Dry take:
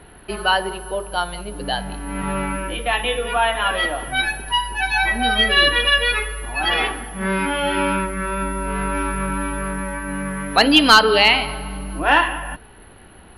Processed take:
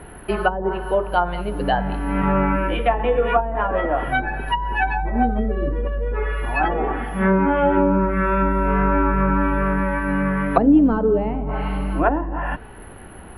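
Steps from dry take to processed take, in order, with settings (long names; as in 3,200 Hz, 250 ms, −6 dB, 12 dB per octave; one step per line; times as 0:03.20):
treble cut that deepens with the level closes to 330 Hz, closed at −14 dBFS
parametric band 4,400 Hz −12 dB 1.3 octaves
level +6 dB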